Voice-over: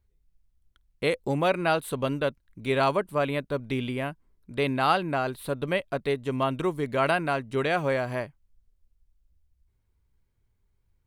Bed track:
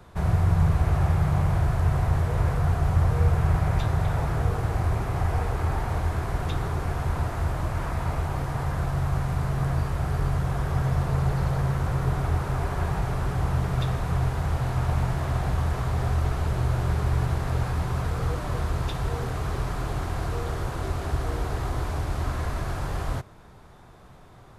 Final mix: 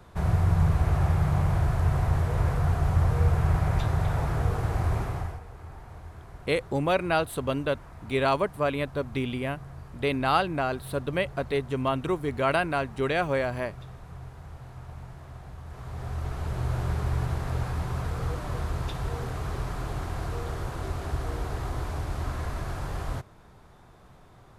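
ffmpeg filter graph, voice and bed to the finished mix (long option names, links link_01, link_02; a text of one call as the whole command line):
ffmpeg -i stem1.wav -i stem2.wav -filter_complex "[0:a]adelay=5450,volume=-0.5dB[link_01];[1:a]volume=12.5dB,afade=type=out:start_time=5:duration=0.4:silence=0.158489,afade=type=in:start_time=15.64:duration=1.13:silence=0.199526[link_02];[link_01][link_02]amix=inputs=2:normalize=0" out.wav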